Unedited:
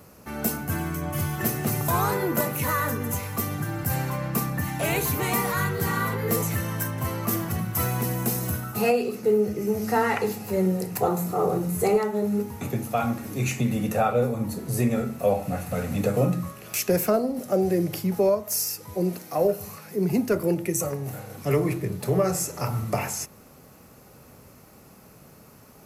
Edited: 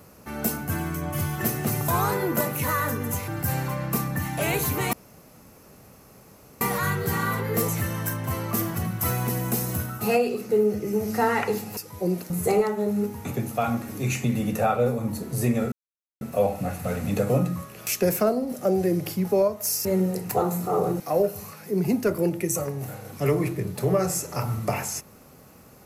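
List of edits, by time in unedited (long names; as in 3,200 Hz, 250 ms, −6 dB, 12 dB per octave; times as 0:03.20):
0:03.28–0:03.70: remove
0:05.35: splice in room tone 1.68 s
0:10.51–0:11.66: swap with 0:18.72–0:19.25
0:15.08: splice in silence 0.49 s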